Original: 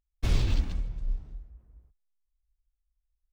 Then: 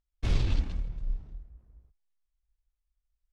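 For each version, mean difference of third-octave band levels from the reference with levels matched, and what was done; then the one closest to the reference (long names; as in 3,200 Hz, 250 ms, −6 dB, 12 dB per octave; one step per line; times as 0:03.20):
1.5 dB: gain on one half-wave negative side −3 dB
high-frequency loss of the air 50 metres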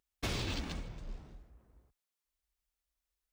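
6.5 dB: high-pass filter 330 Hz 6 dB per octave
downward compressor, threshold −38 dBFS, peak gain reduction 6.5 dB
level +5.5 dB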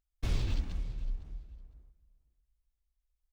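3.0 dB: in parallel at +1 dB: downward compressor, threshold −32 dBFS, peak gain reduction 13.5 dB
on the sum: repeating echo 507 ms, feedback 17%, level −18 dB
level −8.5 dB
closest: first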